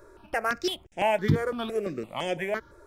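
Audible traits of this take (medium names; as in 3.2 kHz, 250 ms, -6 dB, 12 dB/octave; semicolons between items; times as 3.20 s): notches that jump at a steady rate 5.9 Hz 760–4200 Hz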